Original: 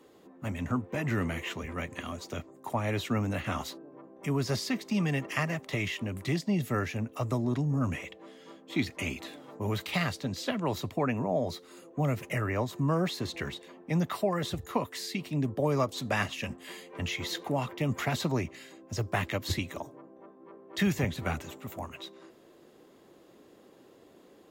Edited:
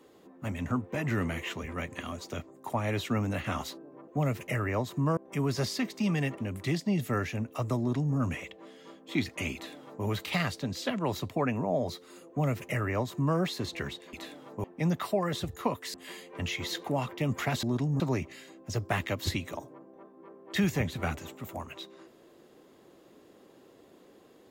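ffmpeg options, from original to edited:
-filter_complex "[0:a]asplit=9[s0][s1][s2][s3][s4][s5][s6][s7][s8];[s0]atrim=end=4.082[s9];[s1]atrim=start=11.898:end=12.992[s10];[s2]atrim=start=4.078:end=5.292[s11];[s3]atrim=start=5.988:end=13.742[s12];[s4]atrim=start=9.148:end=9.662[s13];[s5]atrim=start=13.738:end=15.042[s14];[s6]atrim=start=16.538:end=18.232[s15];[s7]atrim=start=7.398:end=7.772[s16];[s8]atrim=start=18.228[s17];[s9][s10]acrossfade=d=0.004:c1=hsin:c2=hsin[s18];[s18][s11]acrossfade=d=0.004:c1=hsin:c2=hsin[s19];[s19][s12]acrossfade=d=0.004:c1=hsin:c2=hsin[s20];[s20][s13]acrossfade=d=0.004:c1=hsin:c2=hsin[s21];[s21][s14]acrossfade=d=0.004:c1=hsin:c2=hsin[s22];[s22][s15]acrossfade=d=0.004:c1=hsin:c2=hsin[s23];[s23][s16]acrossfade=d=0.004:c1=hsin:c2=hsin[s24];[s24][s17]acrossfade=d=0.004:c1=hsin:c2=hsin"

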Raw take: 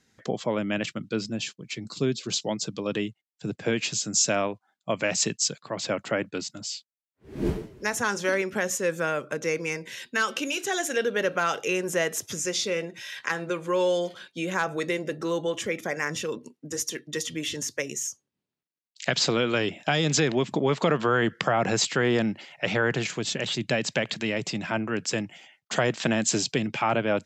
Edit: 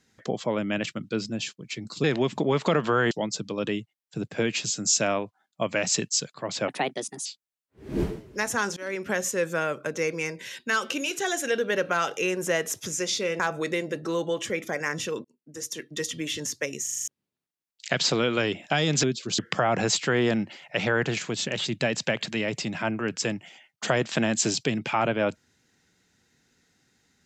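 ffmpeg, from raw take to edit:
-filter_complex "[0:a]asplit=16[s0][s1][s2][s3][s4][s5][s6][s7][s8][s9][s10][s11][s12][s13][s14][s15];[s0]atrim=end=2.042[s16];[s1]atrim=start=20.198:end=21.272[s17];[s2]atrim=start=2.388:end=5.964[s18];[s3]atrim=start=5.96:end=6.72,asetpts=PTS-STARTPTS,asetrate=58212,aresample=44100[s19];[s4]atrim=start=6.716:end=8.23,asetpts=PTS-STARTPTS,afade=t=out:st=1.51:d=0.004:c=hsin:silence=0.0668344[s20];[s5]atrim=start=8.23:end=12.862,asetpts=PTS-STARTPTS,afade=t=in:d=0.31:silence=0.0668344[s21];[s6]atrim=start=14.558:end=16.41,asetpts=PTS-STARTPTS,afade=t=out:st=1.848:d=0.004:c=hsin[s22];[s7]atrim=start=16.41:end=18.042,asetpts=PTS-STARTPTS,afade=t=in:d=0.69[s23];[s8]atrim=start=17.998:end=18.042[s24];[s9]atrim=start=17.998:end=18.042[s25];[s10]atrim=start=17.998:end=18.042[s26];[s11]atrim=start=17.998:end=18.042[s27];[s12]atrim=start=17.998:end=18.042[s28];[s13]atrim=start=18.238:end=20.202[s29];[s14]atrim=start=2.038:end=2.392[s30];[s15]atrim=start=21.268[s31];[s16][s17]acrossfade=d=0.004:c1=hsin:c2=hsin[s32];[s32][s18]acrossfade=d=0.004:c1=hsin:c2=hsin[s33];[s33][s19]acrossfade=d=0.004:c1=hsin:c2=hsin[s34];[s20][s21]concat=n=2:v=0:a=1[s35];[s34][s35]acrossfade=d=0.004:c1=hsin:c2=hsin[s36];[s22][s23]concat=n=2:v=0:a=1[s37];[s36][s37]acrossfade=d=0.004:c1=hsin:c2=hsin[s38];[s38][s24]acrossfade=d=0.004:c1=hsin:c2=hsin[s39];[s39][s25]acrossfade=d=0.004:c1=hsin:c2=hsin[s40];[s40][s26]acrossfade=d=0.004:c1=hsin:c2=hsin[s41];[s41][s27]acrossfade=d=0.004:c1=hsin:c2=hsin[s42];[s42][s28]acrossfade=d=0.004:c1=hsin:c2=hsin[s43];[s43][s29]acrossfade=d=0.004:c1=hsin:c2=hsin[s44];[s44][s30]acrossfade=d=0.004:c1=hsin:c2=hsin[s45];[s45][s31]acrossfade=d=0.004:c1=hsin:c2=hsin"

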